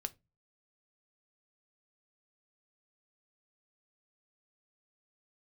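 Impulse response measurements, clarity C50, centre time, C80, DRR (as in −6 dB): 24.0 dB, 3 ms, 31.5 dB, 9.5 dB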